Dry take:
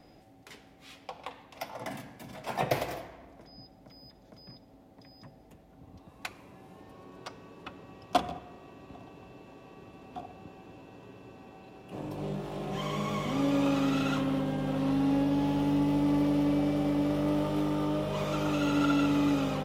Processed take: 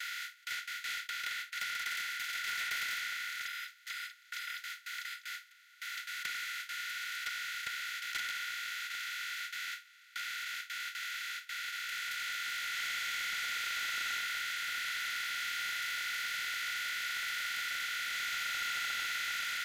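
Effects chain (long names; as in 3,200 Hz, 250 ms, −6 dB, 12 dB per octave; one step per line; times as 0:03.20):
compressor on every frequency bin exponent 0.2
noise gate with hold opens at −16 dBFS
Chebyshev high-pass with heavy ripple 1,400 Hz, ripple 9 dB
parametric band 5,300 Hz −10 dB 0.33 octaves
soft clipping −32 dBFS, distortion −18 dB
level +3 dB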